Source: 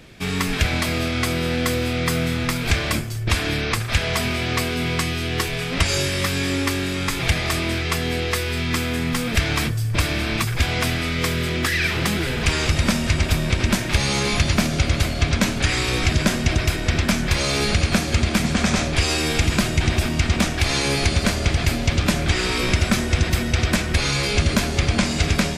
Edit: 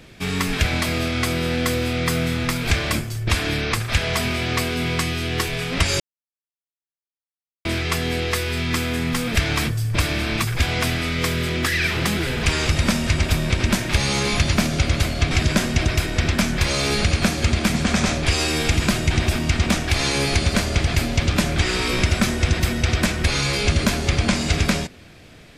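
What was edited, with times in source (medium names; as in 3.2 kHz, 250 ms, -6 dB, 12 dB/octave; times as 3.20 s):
6.00–7.65 s: mute
15.31–16.01 s: delete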